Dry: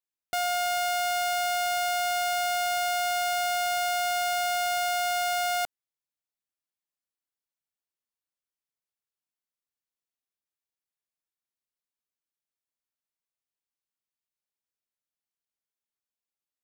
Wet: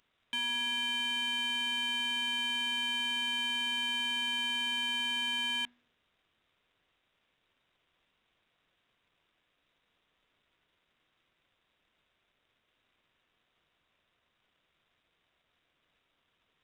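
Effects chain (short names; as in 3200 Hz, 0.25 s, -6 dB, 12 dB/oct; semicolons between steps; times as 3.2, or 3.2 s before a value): zero-crossing step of -41.5 dBFS; inverted band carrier 3800 Hz; notch 840 Hz, Q 13; de-hum 60.82 Hz, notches 35; power-law curve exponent 1.4; gain -4 dB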